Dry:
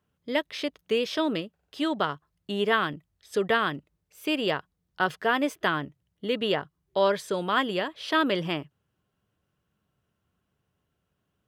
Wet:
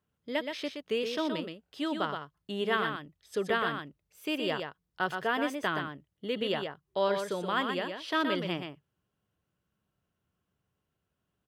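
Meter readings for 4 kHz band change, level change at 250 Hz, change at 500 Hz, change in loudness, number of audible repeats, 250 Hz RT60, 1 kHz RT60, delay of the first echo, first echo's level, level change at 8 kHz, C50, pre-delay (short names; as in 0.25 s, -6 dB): -4.5 dB, -4.5 dB, -4.5 dB, -5.0 dB, 1, none, none, 0.122 s, -6.0 dB, -4.5 dB, none, none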